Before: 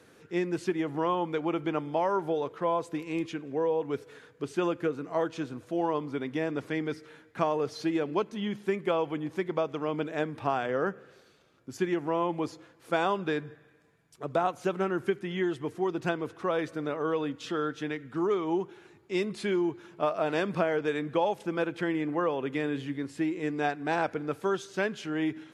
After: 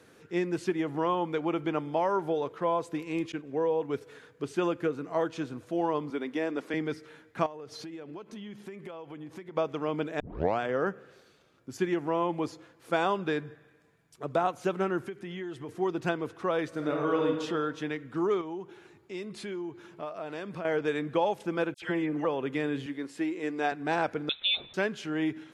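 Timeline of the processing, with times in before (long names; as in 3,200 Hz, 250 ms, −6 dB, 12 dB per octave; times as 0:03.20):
0:03.32–0:04.01: downward expander −38 dBFS
0:06.10–0:06.74: high-pass filter 210 Hz 24 dB per octave
0:07.46–0:09.57: downward compressor 8 to 1, threshold −39 dBFS
0:10.20: tape start 0.40 s
0:15.02–0:15.69: downward compressor 3 to 1, threshold −37 dBFS
0:16.68–0:17.27: thrown reverb, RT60 1.5 s, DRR 1 dB
0:18.41–0:20.65: downward compressor 2 to 1, threshold −41 dBFS
0:21.74–0:22.25: all-pass dispersion lows, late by 81 ms, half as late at 2,100 Hz
0:22.86–0:23.72: high-pass filter 260 Hz
0:24.29–0:24.74: voice inversion scrambler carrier 3,900 Hz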